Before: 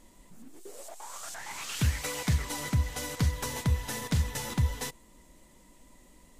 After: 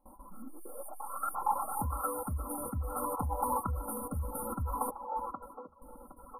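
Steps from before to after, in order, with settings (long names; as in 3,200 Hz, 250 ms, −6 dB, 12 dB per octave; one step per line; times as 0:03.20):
noise gate with hold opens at −46 dBFS
linear-phase brick-wall band-stop 1,400–8,900 Hz
high-shelf EQ 8,100 Hz +4 dB
comb filter 3.7 ms, depth 81%
delay with a band-pass on its return 765 ms, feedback 42%, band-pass 700 Hz, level −7.5 dB
brickwall limiter −27.5 dBFS, peak gain reduction 12 dB
reverb reduction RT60 0.52 s
auto-filter bell 0.6 Hz 830–2,500 Hz +17 dB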